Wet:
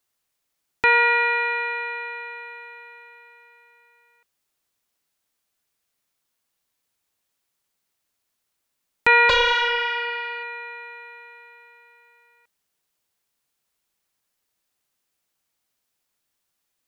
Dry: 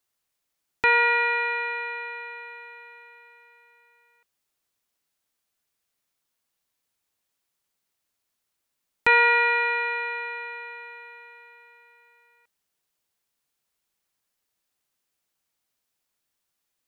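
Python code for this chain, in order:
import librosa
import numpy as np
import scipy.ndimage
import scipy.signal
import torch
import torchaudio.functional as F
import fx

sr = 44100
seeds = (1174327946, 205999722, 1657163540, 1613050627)

y = fx.doppler_dist(x, sr, depth_ms=0.73, at=(9.29, 10.43))
y = y * librosa.db_to_amplitude(2.5)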